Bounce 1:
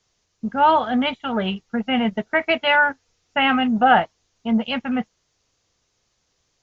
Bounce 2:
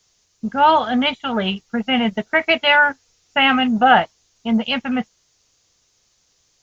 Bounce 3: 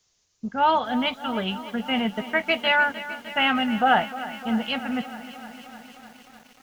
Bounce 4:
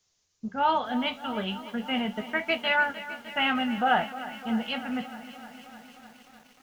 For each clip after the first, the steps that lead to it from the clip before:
treble shelf 3.7 kHz +10.5 dB; trim +1.5 dB
bit-crushed delay 304 ms, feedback 80%, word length 6-bit, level -14.5 dB; trim -6.5 dB
flange 0.35 Hz, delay 9.9 ms, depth 9.9 ms, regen -60%

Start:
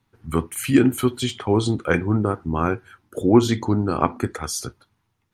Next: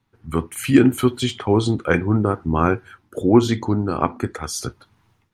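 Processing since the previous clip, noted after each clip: treble shelf 7.2 kHz -5.5 dB; level rider gain up to 15.5 dB; trim -1 dB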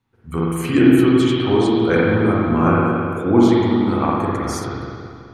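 spring tank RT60 2.3 s, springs 42/54 ms, chirp 65 ms, DRR -6 dB; trim -4 dB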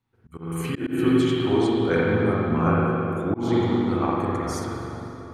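plate-style reverb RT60 4.7 s, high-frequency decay 0.45×, DRR 7.5 dB; slow attack 211 ms; trim -6 dB

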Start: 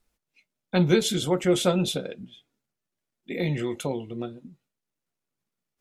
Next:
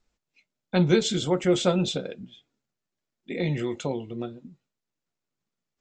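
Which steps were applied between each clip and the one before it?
Chebyshev low-pass 7.6 kHz, order 5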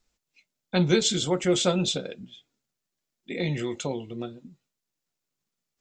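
treble shelf 3.3 kHz +8.5 dB; trim -1.5 dB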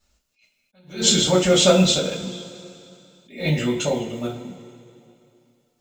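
block-companded coder 7-bit; two-slope reverb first 0.26 s, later 2.7 s, from -21 dB, DRR -8.5 dB; attacks held to a fixed rise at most 160 dB/s

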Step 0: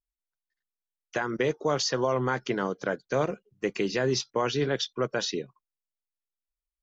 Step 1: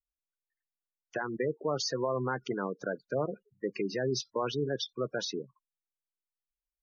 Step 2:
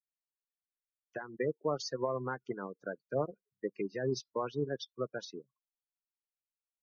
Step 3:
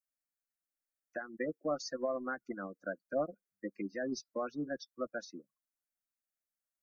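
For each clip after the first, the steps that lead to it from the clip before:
spectral gate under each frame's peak -15 dB strong; trim -4.5 dB
upward expansion 2.5:1, over -43 dBFS
static phaser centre 630 Hz, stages 8; trim +2 dB

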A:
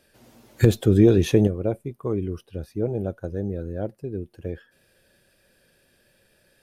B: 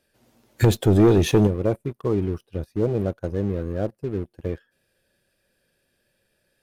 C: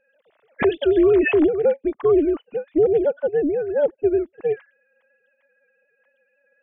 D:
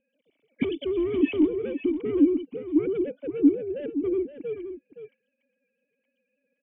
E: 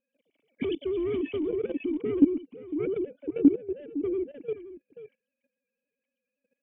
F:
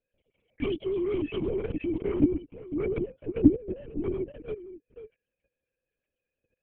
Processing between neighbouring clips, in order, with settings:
waveshaping leveller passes 2; trim -4 dB
formants replaced by sine waves; peak limiter -16.5 dBFS, peak gain reduction 10.5 dB; AM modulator 300 Hz, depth 15%; trim +7 dB
sine folder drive 6 dB, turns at -9.5 dBFS; cascade formant filter i; delay 520 ms -10.5 dB
level held to a coarse grid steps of 15 dB; trim +2 dB
LPC vocoder at 8 kHz whisper

